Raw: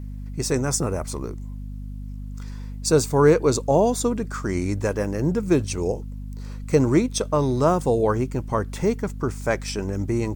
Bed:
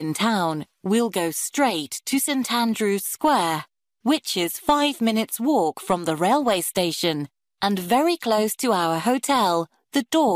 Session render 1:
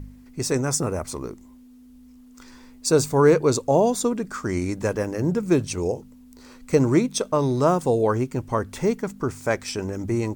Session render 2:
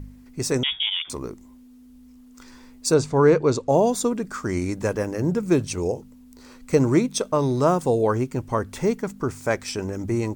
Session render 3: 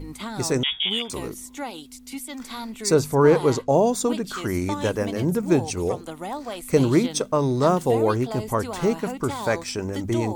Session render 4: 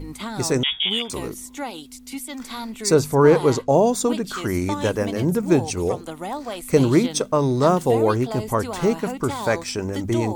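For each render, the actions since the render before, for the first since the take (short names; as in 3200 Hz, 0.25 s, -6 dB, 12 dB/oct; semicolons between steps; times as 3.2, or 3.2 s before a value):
de-hum 50 Hz, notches 4
0.63–1.1 inverted band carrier 3500 Hz; 2.94–3.69 air absorption 90 m
add bed -12.5 dB
gain +2 dB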